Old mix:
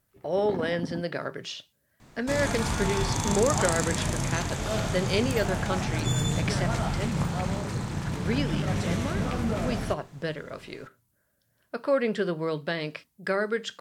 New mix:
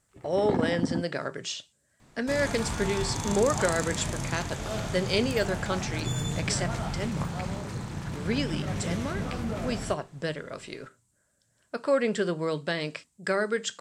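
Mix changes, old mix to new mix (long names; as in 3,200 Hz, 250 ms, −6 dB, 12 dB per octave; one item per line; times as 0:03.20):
speech: add low-pass with resonance 7,800 Hz, resonance Q 4.8
first sound +6.5 dB
second sound −4.0 dB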